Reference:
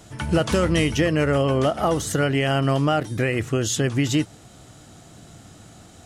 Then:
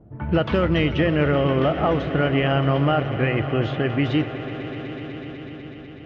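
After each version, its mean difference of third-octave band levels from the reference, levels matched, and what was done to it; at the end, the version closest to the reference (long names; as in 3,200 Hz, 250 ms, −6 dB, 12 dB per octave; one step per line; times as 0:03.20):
8.5 dB: low-pass filter 3,300 Hz 24 dB per octave
low-pass that shuts in the quiet parts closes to 440 Hz, open at −16 dBFS
echo that builds up and dies away 124 ms, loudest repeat 5, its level −16.5 dB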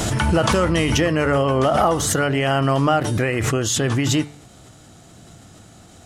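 3.0 dB: hum removal 146.1 Hz, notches 32
dynamic equaliser 1,000 Hz, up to +6 dB, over −37 dBFS, Q 1.1
background raised ahead of every attack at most 22 dB per second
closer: second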